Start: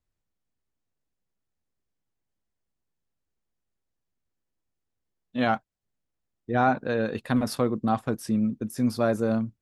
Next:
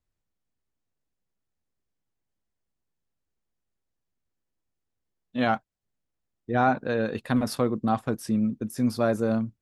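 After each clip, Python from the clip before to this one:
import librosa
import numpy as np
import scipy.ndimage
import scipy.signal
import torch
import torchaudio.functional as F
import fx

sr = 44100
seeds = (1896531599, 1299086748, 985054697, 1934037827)

y = x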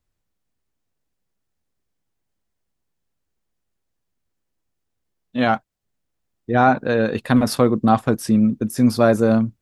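y = fx.rider(x, sr, range_db=10, speed_s=2.0)
y = y * 10.0 ** (8.5 / 20.0)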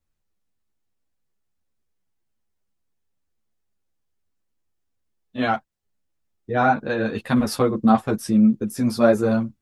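y = fx.ensemble(x, sr)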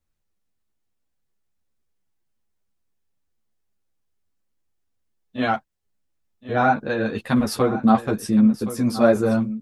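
y = x + 10.0 ** (-14.0 / 20.0) * np.pad(x, (int(1070 * sr / 1000.0), 0))[:len(x)]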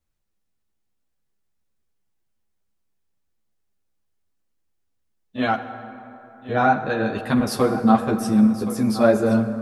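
y = fx.rev_plate(x, sr, seeds[0], rt60_s=3.3, hf_ratio=0.45, predelay_ms=0, drr_db=9.0)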